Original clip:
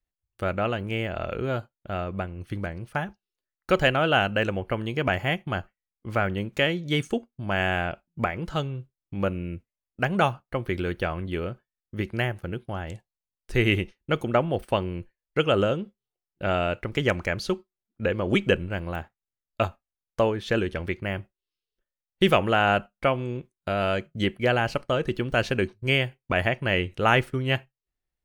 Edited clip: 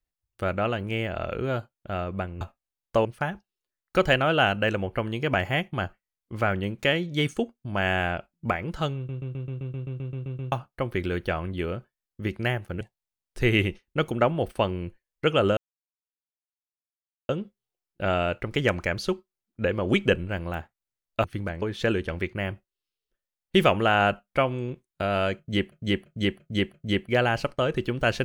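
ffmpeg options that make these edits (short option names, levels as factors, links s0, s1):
-filter_complex "[0:a]asplit=23[s0][s1][s2][s3][s4][s5][s6][s7][s8][s9][s10][s11][s12][s13][s14][s15][s16][s17][s18][s19][s20][s21][s22];[s0]atrim=end=2.412[s23];[s1]atrim=start=19.648:end=20.292[s24];[s2]atrim=start=2.788:end=8.832[s25];[s3]atrim=start=8.698:end=8.832[s26];[s4]atrim=start=8.698:end=8.832[s27];[s5]atrim=start=8.698:end=8.832[s28];[s6]atrim=start=8.698:end=8.832[s29];[s7]atrim=start=8.698:end=8.832[s30];[s8]atrim=start=8.698:end=8.832[s31];[s9]atrim=start=8.698:end=8.832[s32];[s10]atrim=start=8.698:end=8.832[s33];[s11]atrim=start=8.698:end=8.832[s34];[s12]atrim=start=8.698:end=8.832[s35];[s13]atrim=start=8.698:end=8.832[s36];[s14]atrim=start=10.258:end=12.552[s37];[s15]atrim=start=12.938:end=15.7,asetpts=PTS-STARTPTS,afade=t=out:st=2.758:d=0.004:c=hsin,apad=pad_dur=1.72[s38];[s16]atrim=start=15.7:end=19.652,asetpts=PTS-STARTPTS,afade=t=in:d=0.004:c=hsin[s39];[s17]atrim=start=2.408:end=2.792[s40];[s18]atrim=start=20.288:end=24.392[s41];[s19]atrim=start=24.048:end=24.392[s42];[s20]atrim=start=24.048:end=24.392[s43];[s21]atrim=start=24.048:end=24.392[s44];[s22]atrim=start=24.048[s45];[s23][s24]acrossfade=d=0.004:c1=hsin:c2=hsin[s46];[s46][s25]acrossfade=d=0.004:c1=hsin:c2=hsin[s47];[s47][s26]acrossfade=d=0.004:c1=hsin:c2=hsin[s48];[s48][s27]acrossfade=d=0.004:c1=hsin:c2=hsin[s49];[s49][s28]acrossfade=d=0.004:c1=hsin:c2=hsin[s50];[s50][s29]acrossfade=d=0.004:c1=hsin:c2=hsin[s51];[s51][s30]acrossfade=d=0.004:c1=hsin:c2=hsin[s52];[s52][s31]acrossfade=d=0.004:c1=hsin:c2=hsin[s53];[s53][s32]acrossfade=d=0.004:c1=hsin:c2=hsin[s54];[s54][s33]acrossfade=d=0.004:c1=hsin:c2=hsin[s55];[s55][s34]acrossfade=d=0.004:c1=hsin:c2=hsin[s56];[s56][s35]acrossfade=d=0.004:c1=hsin:c2=hsin[s57];[s57][s36]acrossfade=d=0.004:c1=hsin:c2=hsin[s58];[s58][s37]acrossfade=d=0.004:c1=hsin:c2=hsin[s59];[s38][s39]concat=n=2:v=0:a=1[s60];[s59][s60]acrossfade=d=0.004:c1=hsin:c2=hsin[s61];[s61][s40]acrossfade=d=0.004:c1=hsin:c2=hsin[s62];[s62][s41]acrossfade=d=0.004:c1=hsin:c2=hsin[s63];[s63][s42]acrossfade=d=0.004:c1=hsin:c2=hsin[s64];[s64][s43]acrossfade=d=0.004:c1=hsin:c2=hsin[s65];[s65][s44]acrossfade=d=0.004:c1=hsin:c2=hsin[s66];[s66][s45]acrossfade=d=0.004:c1=hsin:c2=hsin"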